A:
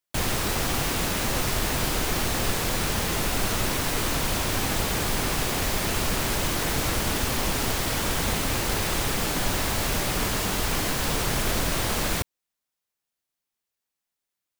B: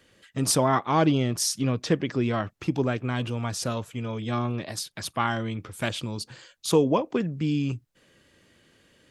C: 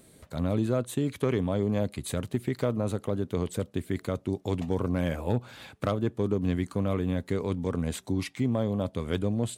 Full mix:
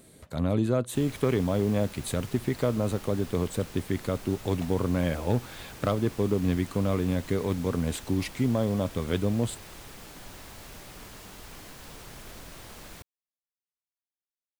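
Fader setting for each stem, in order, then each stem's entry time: -19.5 dB, mute, +1.5 dB; 0.80 s, mute, 0.00 s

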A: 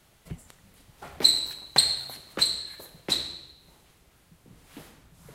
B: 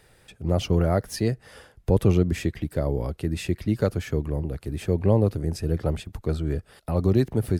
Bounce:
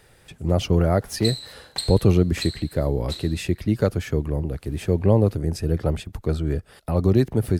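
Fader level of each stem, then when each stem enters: -8.5 dB, +2.5 dB; 0.00 s, 0.00 s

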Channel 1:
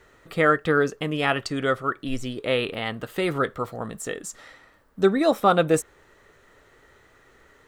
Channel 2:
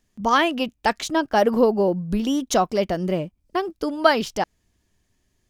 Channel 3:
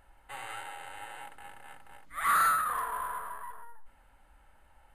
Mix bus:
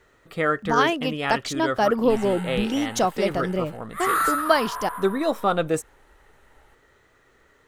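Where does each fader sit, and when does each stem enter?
-3.5 dB, -2.5 dB, +3.0 dB; 0.00 s, 0.45 s, 1.80 s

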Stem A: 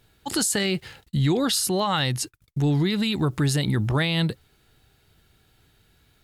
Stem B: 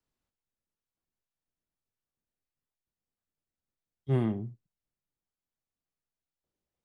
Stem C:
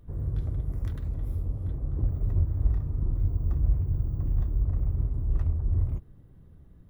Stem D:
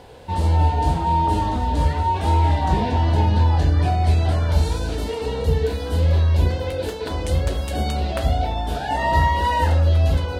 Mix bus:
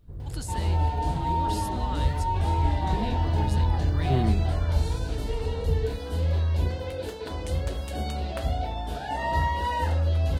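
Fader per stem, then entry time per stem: -16.5 dB, +1.5 dB, -5.0 dB, -7.5 dB; 0.00 s, 0.00 s, 0.00 s, 0.20 s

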